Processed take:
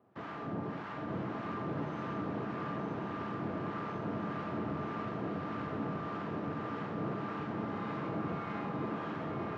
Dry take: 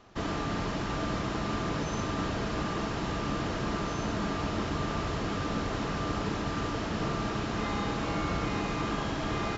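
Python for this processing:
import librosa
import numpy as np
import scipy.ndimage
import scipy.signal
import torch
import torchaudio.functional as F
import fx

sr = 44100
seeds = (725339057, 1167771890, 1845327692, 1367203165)

p1 = fx.quant_companded(x, sr, bits=2)
p2 = x + F.gain(torch.from_numpy(p1), -10.0).numpy()
p3 = scipy.signal.sosfilt(scipy.signal.butter(2, 1700.0, 'lowpass', fs=sr, output='sos'), p2)
p4 = p3 + 10.0 ** (-6.5 / 20.0) * np.pad(p3, (int(228 * sr / 1000.0), 0))[:len(p3)]
p5 = fx.harmonic_tremolo(p4, sr, hz=1.7, depth_pct=70, crossover_hz=850.0)
p6 = scipy.signal.sosfilt(scipy.signal.butter(4, 110.0, 'highpass', fs=sr, output='sos'), p5)
p7 = p6 + 10.0 ** (-4.5 / 20.0) * np.pad(p6, (int(917 * sr / 1000.0), 0))[:len(p6)]
y = F.gain(torch.from_numpy(p7), -7.5).numpy()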